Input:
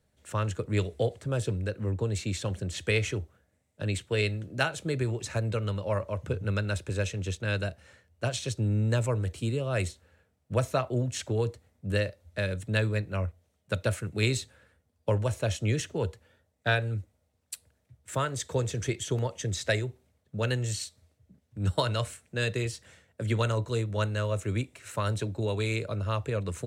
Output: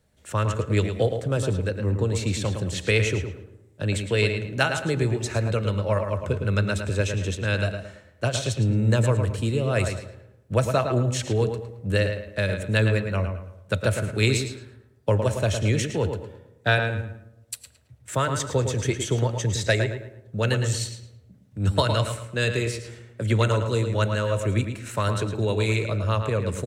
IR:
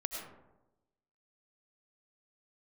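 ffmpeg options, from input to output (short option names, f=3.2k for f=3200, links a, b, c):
-filter_complex "[0:a]asplit=2[a][b];[b]adelay=110,lowpass=f=3.6k:p=1,volume=-6.5dB,asplit=2[c][d];[d]adelay=110,lowpass=f=3.6k:p=1,volume=0.33,asplit=2[e][f];[f]adelay=110,lowpass=f=3.6k:p=1,volume=0.33,asplit=2[g][h];[h]adelay=110,lowpass=f=3.6k:p=1,volume=0.33[i];[a][c][e][g][i]amix=inputs=5:normalize=0,asplit=2[j][k];[1:a]atrim=start_sample=2205[l];[k][l]afir=irnorm=-1:irlink=0,volume=-13dB[m];[j][m]amix=inputs=2:normalize=0,volume=3.5dB"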